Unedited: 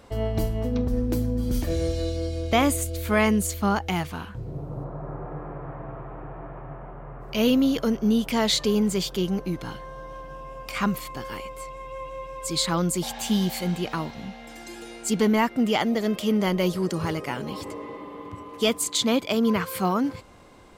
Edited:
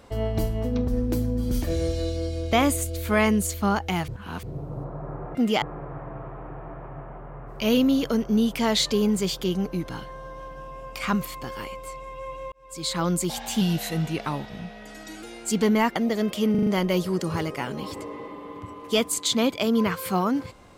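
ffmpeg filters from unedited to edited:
-filter_complex "[0:a]asplit=13[a][b][c][d][e][f][g][h][i][j][k][l][m];[a]atrim=end=4.082[n];[b]atrim=start=4.078:end=4.432,asetpts=PTS-STARTPTS,areverse[o];[c]atrim=start=4.428:end=5.352[p];[d]atrim=start=15.538:end=15.812[q];[e]atrim=start=5.348:end=12.25,asetpts=PTS-STARTPTS,afade=t=out:st=6.898:d=0.004:c=hsin[r];[f]atrim=start=12.25:end=13.344,asetpts=PTS-STARTPTS,afade=t=in:d=0.56[s];[g]atrim=start=13.34:end=14.81,asetpts=PTS-STARTPTS,asetrate=40131,aresample=44100,atrim=end_sample=71238,asetpts=PTS-STARTPTS[t];[h]atrim=start=14.806:end=15.542[u];[i]atrim=start=15.808:end=16.402[v];[j]atrim=start=16.358:end=16.402[w];[k]atrim=start=16.358:end=16.402[x];[l]atrim=start=16.358:end=16.402[y];[m]atrim=start=16.358[z];[n][o]acrossfade=d=0.004:c1=hsin:c2=hsin[aa];[aa][p]acrossfade=d=0.004:c1=hsin:c2=hsin[ab];[ab][q]acrossfade=d=0.004:c1=hsin:c2=hsin[ac];[r][s]concat=n=2:v=0:a=1[ad];[ac][ad]acrossfade=d=0.004:c1=hsin:c2=hsin[ae];[ae][t]acrossfade=d=0.004:c1=hsin:c2=hsin[af];[af][u]acrossfade=d=0.004:c1=hsin:c2=hsin[ag];[ag][v]acrossfade=d=0.004:c1=hsin:c2=hsin[ah];[ah][w]acrossfade=d=0.004:c1=hsin:c2=hsin[ai];[ai][x]acrossfade=d=0.004:c1=hsin:c2=hsin[aj];[aj][y]acrossfade=d=0.004:c1=hsin:c2=hsin[ak];[ak][z]acrossfade=d=0.004:c1=hsin:c2=hsin"

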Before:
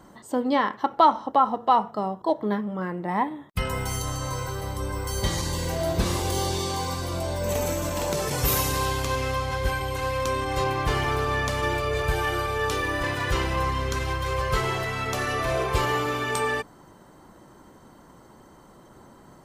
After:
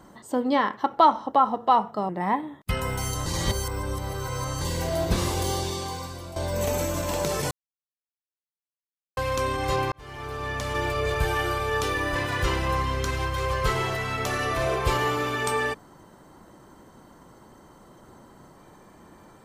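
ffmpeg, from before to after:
-filter_complex "[0:a]asplit=8[a][b][c][d][e][f][g][h];[a]atrim=end=2.092[i];[b]atrim=start=2.968:end=4.142[j];[c]atrim=start=4.138:end=5.492,asetpts=PTS-STARTPTS,areverse[k];[d]atrim=start=5.488:end=7.24,asetpts=PTS-STARTPTS,afade=t=out:st=0.762:d=0.99:silence=0.266073[l];[e]atrim=start=7.24:end=8.39,asetpts=PTS-STARTPTS,afade=t=in:d=0.004:c=hsin:silence=0.266073,afade=t=out:st=1.146:d=0.004:c=hsin[m];[f]atrim=start=8.39:end=10.05,asetpts=PTS-STARTPTS,volume=0[n];[g]atrim=start=10.05:end=10.8,asetpts=PTS-STARTPTS,afade=t=in:d=0.004:c=hsin,afade=t=out:st=0.746:d=0.004:c=hsin[o];[h]atrim=start=10.8,asetpts=PTS-STARTPTS,afade=t=in:d=1.07[p];[i][j]acrossfade=d=0.004:c1=hsin:c2=hsin[q];[q][k]acrossfade=d=0.004:c1=hsin:c2=hsin[r];[l][m][n][o][p]concat=n=5:v=0:a=1[s];[r][s]acrossfade=d=0.004:c1=hsin:c2=hsin"

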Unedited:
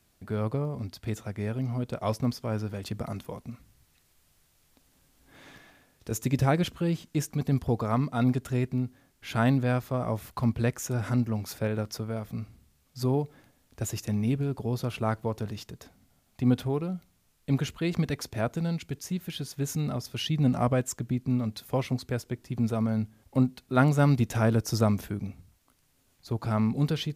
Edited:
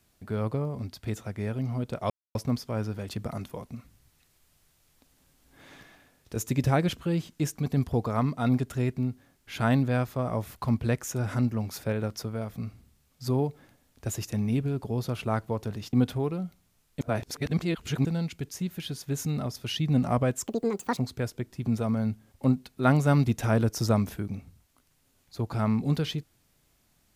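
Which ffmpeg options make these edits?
-filter_complex "[0:a]asplit=7[a][b][c][d][e][f][g];[a]atrim=end=2.1,asetpts=PTS-STARTPTS,afade=t=out:st=2.096:d=0.004:c=hsin,apad=pad_dur=0.25[h];[b]atrim=start=2.1:end=15.682,asetpts=PTS-STARTPTS,afade=t=in:d=0.004:c=hsin[i];[c]atrim=start=16.428:end=17.512[j];[d]atrim=start=17.508:end=18.552,asetpts=PTS-STARTPTS,areverse[k];[e]atrim=start=18.548:end=20.974[l];[f]atrim=start=20.97:end=21.89,asetpts=PTS-STARTPTS,asetrate=80703,aresample=44100,atrim=end_sample=22170,asetpts=PTS-STARTPTS[m];[g]atrim=start=21.886[n];[h][i]concat=n=2:v=0:a=1[o];[o][j]acrossfade=d=0.004:c1=hsin:c2=hsin[p];[p][k]acrossfade=d=0.004:c1=hsin:c2=hsin[q];[q][l]acrossfade=d=0.004:c1=hsin:c2=hsin[r];[r][m]acrossfade=d=0.004:c1=hsin:c2=hsin[s];[s][n]acrossfade=d=0.004:c1=hsin:c2=hsin"

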